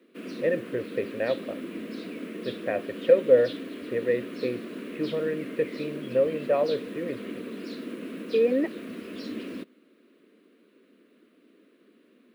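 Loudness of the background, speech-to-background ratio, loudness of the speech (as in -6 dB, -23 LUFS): -37.5 LUFS, 10.0 dB, -27.5 LUFS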